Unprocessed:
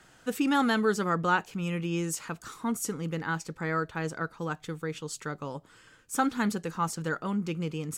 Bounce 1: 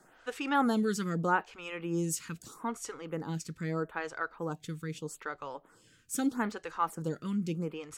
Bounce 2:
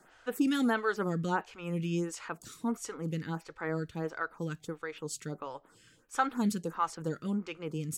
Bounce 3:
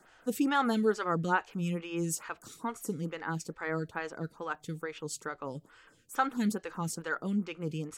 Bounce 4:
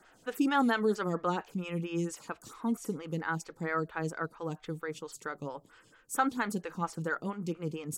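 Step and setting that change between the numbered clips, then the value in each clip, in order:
lamp-driven phase shifter, rate: 0.79 Hz, 1.5 Hz, 2.3 Hz, 4.4 Hz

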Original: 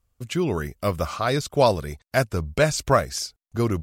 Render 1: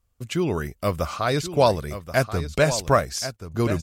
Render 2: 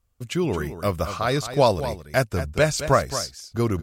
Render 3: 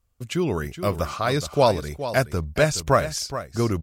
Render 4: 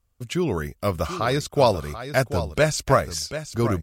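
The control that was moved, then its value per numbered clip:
delay, time: 1080 ms, 220 ms, 421 ms, 736 ms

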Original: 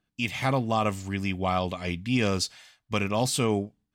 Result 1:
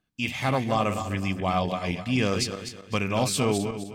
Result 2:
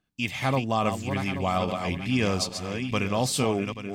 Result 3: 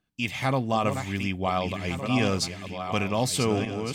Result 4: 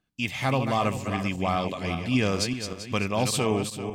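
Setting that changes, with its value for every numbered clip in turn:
backward echo that repeats, time: 128 ms, 416 ms, 731 ms, 195 ms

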